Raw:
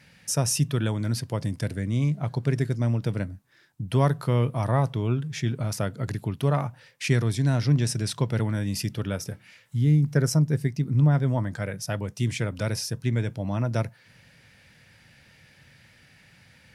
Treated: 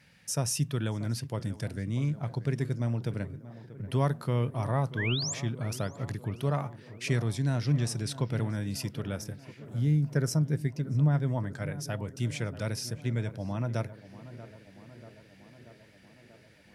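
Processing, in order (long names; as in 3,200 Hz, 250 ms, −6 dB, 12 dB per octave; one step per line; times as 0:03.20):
sound drawn into the spectrogram rise, 0:04.97–0:05.34, 1,500–7,800 Hz −28 dBFS
tape delay 636 ms, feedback 80%, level −13.5 dB, low-pass 1,600 Hz
level −5.5 dB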